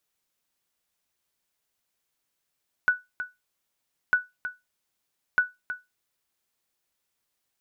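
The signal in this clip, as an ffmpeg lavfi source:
-f lavfi -i "aevalsrc='0.237*(sin(2*PI*1480*mod(t,1.25))*exp(-6.91*mod(t,1.25)/0.2)+0.266*sin(2*PI*1480*max(mod(t,1.25)-0.32,0))*exp(-6.91*max(mod(t,1.25)-0.32,0)/0.2))':d=3.75:s=44100"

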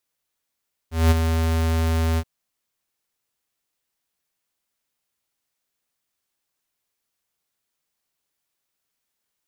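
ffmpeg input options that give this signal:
-f lavfi -i "aevalsrc='0.211*(2*lt(mod(81.3*t,1),0.5)-1)':d=1.326:s=44100,afade=t=in:d=0.2,afade=t=out:st=0.2:d=0.022:silence=0.447,afade=t=out:st=1.27:d=0.056"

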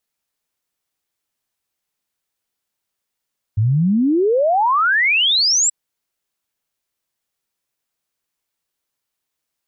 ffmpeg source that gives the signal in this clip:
-f lavfi -i "aevalsrc='0.237*clip(min(t,2.13-t)/0.01,0,1)*sin(2*PI*100*2.13/log(7900/100)*(exp(log(7900/100)*t/2.13)-1))':d=2.13:s=44100"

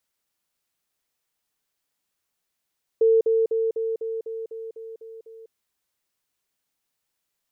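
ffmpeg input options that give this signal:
-f lavfi -i "aevalsrc='pow(10,(-14-3*floor(t/0.25))/20)*sin(2*PI*450*t)*clip(min(mod(t,0.25),0.2-mod(t,0.25))/0.005,0,1)':d=2.5:s=44100"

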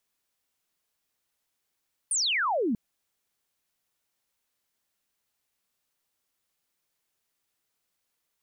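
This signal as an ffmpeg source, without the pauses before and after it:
-f lavfi -i "aevalsrc='0.0668*clip(t/0.002,0,1)*clip((0.64-t)/0.002,0,1)*sin(2*PI*9800*0.64/log(200/9800)*(exp(log(200/9800)*t/0.64)-1))':d=0.64:s=44100"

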